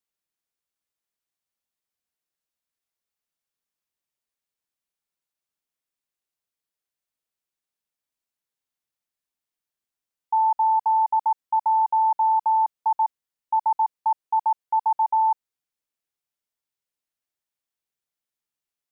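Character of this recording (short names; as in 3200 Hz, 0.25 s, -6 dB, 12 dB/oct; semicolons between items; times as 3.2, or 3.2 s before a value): noise floor -89 dBFS; spectral tilt +4.5 dB/oct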